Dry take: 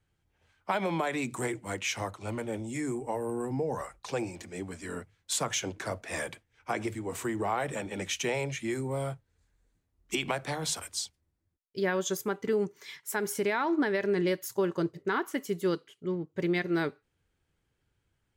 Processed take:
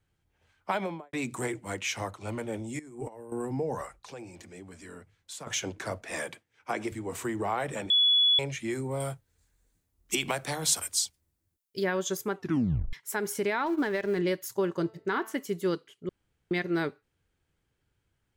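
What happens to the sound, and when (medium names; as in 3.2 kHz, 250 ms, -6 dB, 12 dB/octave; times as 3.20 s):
0.73–1.13 s: studio fade out
2.79–3.32 s: compressor with a negative ratio -40 dBFS, ratio -0.5
3.96–5.47 s: compression 2:1, threshold -48 dBFS
6.11–6.92 s: high-pass 150 Hz
7.90–8.39 s: bleep 3.4 kHz -19 dBFS
9.00–11.84 s: treble shelf 5.8 kHz +12 dB
12.37 s: tape stop 0.56 s
13.66–14.19 s: companding laws mixed up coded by A
14.76–15.35 s: de-hum 221.2 Hz, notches 23
16.09–16.51 s: room tone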